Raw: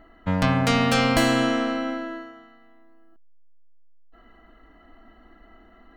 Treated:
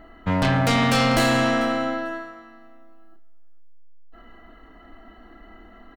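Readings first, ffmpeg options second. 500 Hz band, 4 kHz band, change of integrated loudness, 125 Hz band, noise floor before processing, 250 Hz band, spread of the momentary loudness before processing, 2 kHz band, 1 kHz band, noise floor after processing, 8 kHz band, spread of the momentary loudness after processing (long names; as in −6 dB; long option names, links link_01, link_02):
+2.0 dB, +1.0 dB, +1.5 dB, +2.0 dB, −54 dBFS, 0.0 dB, 13 LU, +2.0 dB, +2.0 dB, −48 dBFS, +1.5 dB, 13 LU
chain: -filter_complex "[0:a]asplit=2[link_01][link_02];[link_02]adelay=29,volume=-8dB[link_03];[link_01][link_03]amix=inputs=2:normalize=0,aecho=1:1:444|888:0.0708|0.012,asoftclip=type=tanh:threshold=-19dB,volume=4.5dB"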